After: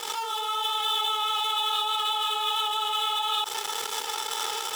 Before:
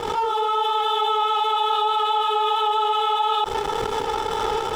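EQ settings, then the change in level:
first difference
+8.5 dB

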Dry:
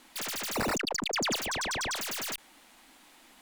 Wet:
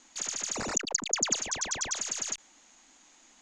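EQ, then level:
low-pass with resonance 6,700 Hz, resonance Q 13
high-frequency loss of the air 55 metres
−5.0 dB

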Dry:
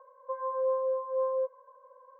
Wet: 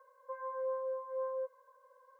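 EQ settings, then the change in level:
parametric band 470 Hz −14.5 dB 1.7 octaves
phaser with its sweep stopped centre 350 Hz, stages 4
+9.0 dB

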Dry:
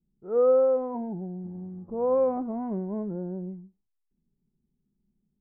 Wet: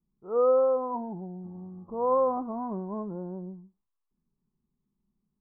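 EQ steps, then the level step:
low-pass with resonance 1,100 Hz, resonance Q 5
−4.0 dB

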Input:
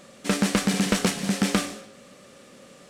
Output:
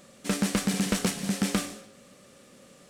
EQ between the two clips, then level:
low-shelf EQ 200 Hz +5 dB
high-shelf EQ 7,800 Hz +7.5 dB
−6.0 dB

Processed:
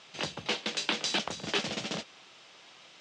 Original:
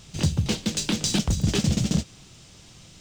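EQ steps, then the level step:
band-pass filter 620–3,200 Hz
+3.0 dB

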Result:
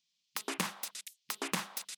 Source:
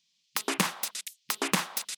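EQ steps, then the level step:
mains-hum notches 50/100/150/200 Hz
−7.5 dB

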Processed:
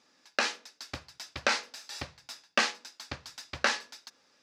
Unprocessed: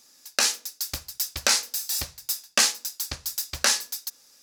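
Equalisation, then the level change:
high-pass filter 110 Hz 12 dB per octave
low-pass filter 2,700 Hz 12 dB per octave
0.0 dB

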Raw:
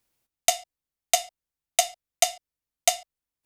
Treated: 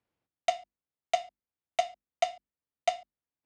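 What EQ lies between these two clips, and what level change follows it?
high-pass filter 73 Hz 12 dB per octave
head-to-tape spacing loss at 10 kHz 33 dB
mains-hum notches 50/100/150/200/250/300/350 Hz
0.0 dB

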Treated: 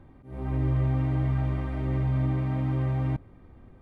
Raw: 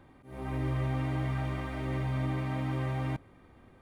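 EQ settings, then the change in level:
spectral tilt −2.5 dB per octave
−1.0 dB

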